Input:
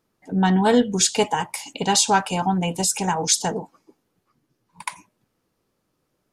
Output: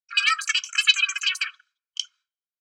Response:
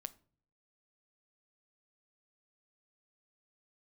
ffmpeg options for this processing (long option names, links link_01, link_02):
-filter_complex "[0:a]highpass=frequency=210:width_type=q:width=0.5412,highpass=frequency=210:width_type=q:width=1.307,lowpass=frequency=2600:width_type=q:width=0.5176,lowpass=frequency=2600:width_type=q:width=0.7071,lowpass=frequency=2600:width_type=q:width=1.932,afreqshift=310,aecho=1:1:3:0.94,asetrate=107163,aresample=44100,agate=range=-33dB:threshold=-49dB:ratio=3:detection=peak,asetrate=42845,aresample=44100,atempo=1.0293,equalizer=frequency=1700:width=2.6:gain=-12,acrossover=split=800[link_01][link_02];[link_01]adelay=70[link_03];[link_03][link_02]amix=inputs=2:normalize=0,asplit=2[link_04][link_05];[1:a]atrim=start_sample=2205[link_06];[link_05][link_06]afir=irnorm=-1:irlink=0,volume=-6dB[link_07];[link_04][link_07]amix=inputs=2:normalize=0"